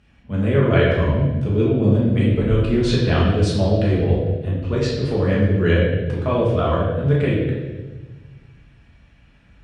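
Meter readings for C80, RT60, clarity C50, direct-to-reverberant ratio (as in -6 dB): 4.0 dB, 1.2 s, 1.0 dB, -6.0 dB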